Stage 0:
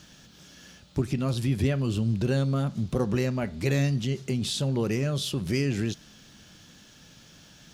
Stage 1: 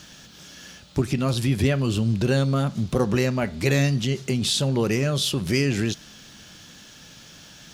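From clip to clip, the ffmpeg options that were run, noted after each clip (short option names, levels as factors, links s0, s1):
-af "lowshelf=f=490:g=-4.5,volume=2.37"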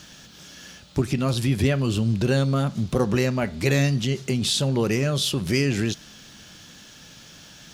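-af anull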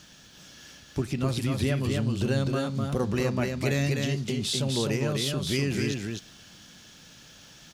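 -af "aecho=1:1:253:0.668,volume=0.501"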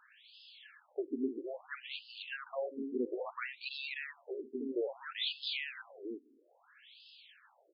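-af "afftfilt=real='re*between(b*sr/1024,310*pow(3700/310,0.5+0.5*sin(2*PI*0.6*pts/sr))/1.41,310*pow(3700/310,0.5+0.5*sin(2*PI*0.6*pts/sr))*1.41)':imag='im*between(b*sr/1024,310*pow(3700/310,0.5+0.5*sin(2*PI*0.6*pts/sr))/1.41,310*pow(3700/310,0.5+0.5*sin(2*PI*0.6*pts/sr))*1.41)':win_size=1024:overlap=0.75,volume=0.75"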